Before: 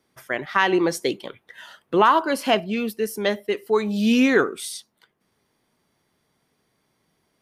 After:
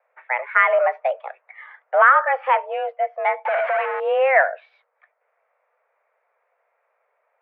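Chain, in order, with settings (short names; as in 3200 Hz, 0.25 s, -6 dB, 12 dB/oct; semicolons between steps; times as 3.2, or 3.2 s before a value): 3.45–4 infinite clipping; dynamic EQ 1600 Hz, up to +4 dB, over -30 dBFS, Q 1.2; in parallel at -7 dB: overloaded stage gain 20.5 dB; on the sum: mistuned SSB +260 Hz 250–2000 Hz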